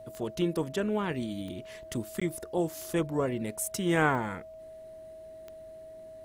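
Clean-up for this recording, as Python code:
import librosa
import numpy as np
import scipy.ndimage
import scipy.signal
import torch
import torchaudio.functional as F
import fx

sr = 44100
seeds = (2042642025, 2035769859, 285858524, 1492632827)

y = fx.fix_declick_ar(x, sr, threshold=10.0)
y = fx.notch(y, sr, hz=640.0, q=30.0)
y = fx.fix_interpolate(y, sr, at_s=(2.2,), length_ms=15.0)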